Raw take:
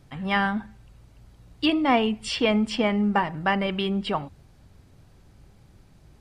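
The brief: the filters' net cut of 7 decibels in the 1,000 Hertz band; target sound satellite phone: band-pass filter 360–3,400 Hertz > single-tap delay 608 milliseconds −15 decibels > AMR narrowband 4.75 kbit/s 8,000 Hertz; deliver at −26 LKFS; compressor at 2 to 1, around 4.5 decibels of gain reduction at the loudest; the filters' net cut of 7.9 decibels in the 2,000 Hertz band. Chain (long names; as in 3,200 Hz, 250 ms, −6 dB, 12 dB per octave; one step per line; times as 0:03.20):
parametric band 1,000 Hz −8 dB
parametric band 2,000 Hz −7 dB
downward compressor 2 to 1, threshold −27 dBFS
band-pass filter 360–3,400 Hz
single-tap delay 608 ms −15 dB
level +9.5 dB
AMR narrowband 4.75 kbit/s 8,000 Hz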